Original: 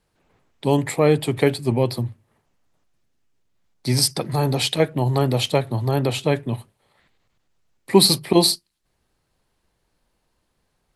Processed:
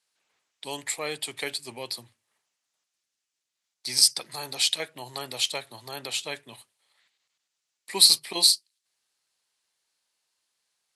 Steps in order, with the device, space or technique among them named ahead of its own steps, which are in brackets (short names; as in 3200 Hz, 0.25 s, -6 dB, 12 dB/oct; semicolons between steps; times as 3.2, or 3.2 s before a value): piezo pickup straight into a mixer (LPF 7300 Hz 12 dB/oct; differentiator); gain +5.5 dB